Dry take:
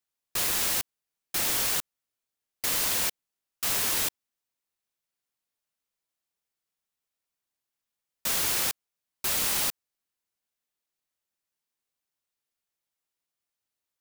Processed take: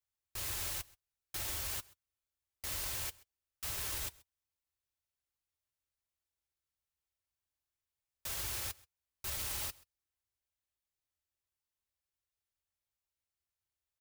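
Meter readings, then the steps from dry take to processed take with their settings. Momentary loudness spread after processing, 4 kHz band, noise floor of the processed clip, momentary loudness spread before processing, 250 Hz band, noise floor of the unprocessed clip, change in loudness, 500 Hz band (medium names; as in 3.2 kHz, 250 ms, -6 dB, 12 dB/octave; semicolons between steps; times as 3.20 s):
9 LU, -12.5 dB, under -85 dBFS, 9 LU, -14.5 dB, under -85 dBFS, -12.5 dB, -13.0 dB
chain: resonant low shelf 120 Hz +12 dB, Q 1.5; peak limiter -22.5 dBFS, peak gain reduction 9 dB; comb of notches 240 Hz; on a send: delay 131 ms -23.5 dB; on the sum: trim -5.5 dB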